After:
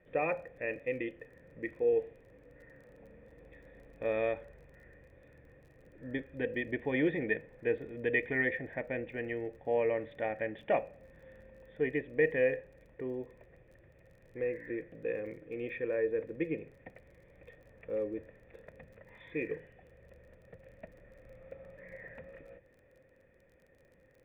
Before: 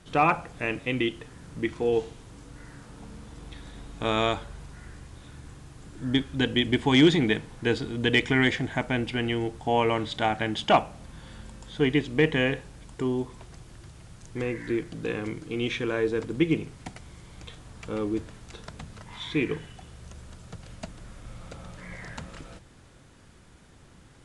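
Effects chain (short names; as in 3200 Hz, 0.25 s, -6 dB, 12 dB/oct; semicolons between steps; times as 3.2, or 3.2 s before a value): vocal tract filter e; crackle 30/s -59 dBFS; gain +4 dB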